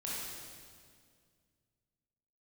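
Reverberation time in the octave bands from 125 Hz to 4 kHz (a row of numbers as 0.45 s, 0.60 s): 2.9 s, 2.6 s, 2.2 s, 1.9 s, 1.8 s, 1.8 s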